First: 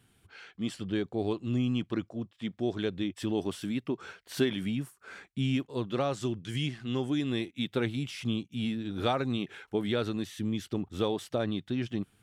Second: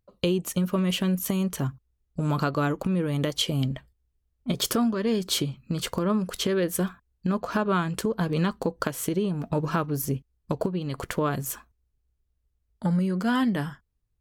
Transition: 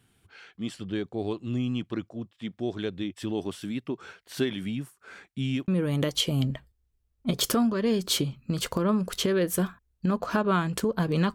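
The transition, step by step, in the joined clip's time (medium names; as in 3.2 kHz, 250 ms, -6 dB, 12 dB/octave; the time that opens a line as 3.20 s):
first
5.68 s: go over to second from 2.89 s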